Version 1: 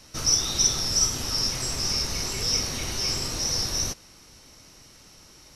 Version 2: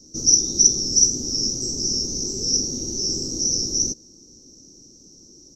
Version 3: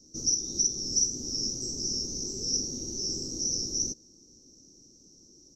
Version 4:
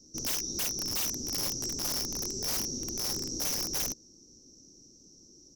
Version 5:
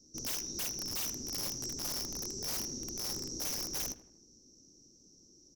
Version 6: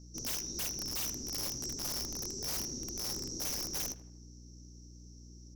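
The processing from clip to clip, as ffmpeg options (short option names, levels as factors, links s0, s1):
-af "firequalizer=gain_entry='entry(100,0);entry(230,11);entry(340,12);entry(660,-9);entry(1100,-18);entry(2200,-29);entry(3700,-15);entry(5900,12);entry(10000,-21);entry(15000,-2)':delay=0.05:min_phase=1,volume=0.668"
-af "alimiter=limit=0.422:level=0:latency=1:release=238,volume=0.398"
-af "aeval=exprs='(mod(18.8*val(0)+1,2)-1)/18.8':c=same"
-filter_complex "[0:a]asplit=2[s0][s1];[s1]adelay=79,lowpass=f=2700:p=1,volume=0.2,asplit=2[s2][s3];[s3]adelay=79,lowpass=f=2700:p=1,volume=0.48,asplit=2[s4][s5];[s5]adelay=79,lowpass=f=2700:p=1,volume=0.48,asplit=2[s6][s7];[s7]adelay=79,lowpass=f=2700:p=1,volume=0.48,asplit=2[s8][s9];[s9]adelay=79,lowpass=f=2700:p=1,volume=0.48[s10];[s0][s2][s4][s6][s8][s10]amix=inputs=6:normalize=0,volume=0.562"
-af "aeval=exprs='val(0)+0.00282*(sin(2*PI*60*n/s)+sin(2*PI*2*60*n/s)/2+sin(2*PI*3*60*n/s)/3+sin(2*PI*4*60*n/s)/4+sin(2*PI*5*60*n/s)/5)':c=same"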